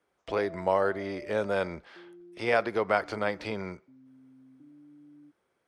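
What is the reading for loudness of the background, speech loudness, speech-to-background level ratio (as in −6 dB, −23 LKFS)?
−49.5 LKFS, −30.0 LKFS, 19.5 dB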